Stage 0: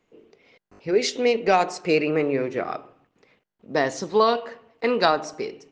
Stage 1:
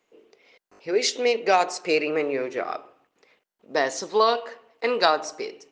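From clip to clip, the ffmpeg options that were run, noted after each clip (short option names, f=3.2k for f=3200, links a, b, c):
-af "bass=f=250:g=-15,treble=f=4k:g=4"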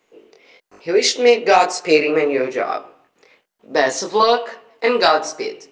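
-af "apsyclip=12dB,flanger=delay=18:depth=7.3:speed=1.1,volume=-1.5dB"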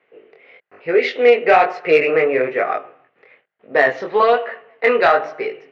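-filter_complex "[0:a]highpass=130,equalizer=f=130:t=q:w=4:g=3,equalizer=f=210:t=q:w=4:g=-8,equalizer=f=310:t=q:w=4:g=-8,equalizer=f=960:t=q:w=4:g=-7,equalizer=f=1.9k:t=q:w=4:g=4,lowpass=f=2.6k:w=0.5412,lowpass=f=2.6k:w=1.3066,asplit=2[a][b];[b]asoftclip=type=tanh:threshold=-10dB,volume=-3dB[c];[a][c]amix=inputs=2:normalize=0,volume=-1.5dB"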